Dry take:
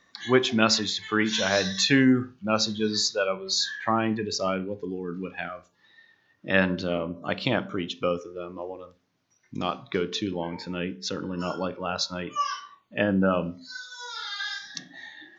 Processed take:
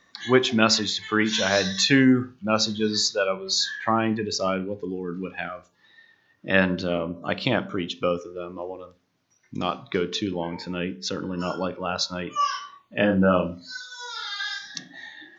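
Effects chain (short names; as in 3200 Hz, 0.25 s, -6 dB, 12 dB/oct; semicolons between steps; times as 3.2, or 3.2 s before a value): 12.39–13.81 doubler 33 ms -4 dB; gain +2 dB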